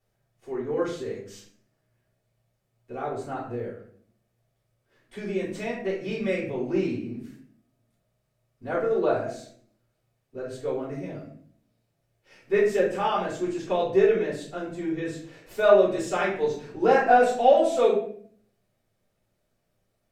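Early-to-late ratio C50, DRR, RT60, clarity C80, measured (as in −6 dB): 4.5 dB, −7.0 dB, 0.55 s, 8.5 dB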